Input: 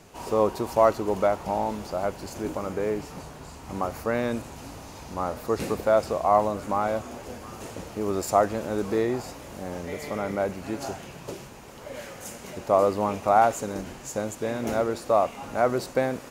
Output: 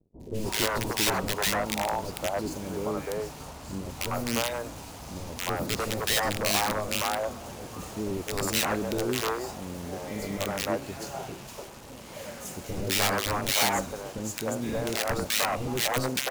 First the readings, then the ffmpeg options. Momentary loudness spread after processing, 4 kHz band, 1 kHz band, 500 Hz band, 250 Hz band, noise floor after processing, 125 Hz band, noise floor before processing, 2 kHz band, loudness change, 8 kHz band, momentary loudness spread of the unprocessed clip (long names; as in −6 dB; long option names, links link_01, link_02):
14 LU, +13.0 dB, −5.5 dB, −7.0 dB, −2.0 dB, −44 dBFS, +1.0 dB, −44 dBFS, +5.5 dB, −2.5 dB, +8.5 dB, 17 LU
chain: -filter_complex "[0:a]aeval=exprs='(mod(7.08*val(0)+1,2)-1)/7.08':channel_layout=same,acrusher=bits=6:mix=0:aa=0.5,acrossover=split=430|1800[link_01][link_02][link_03];[link_03]adelay=200[link_04];[link_02]adelay=300[link_05];[link_01][link_05][link_04]amix=inputs=3:normalize=0"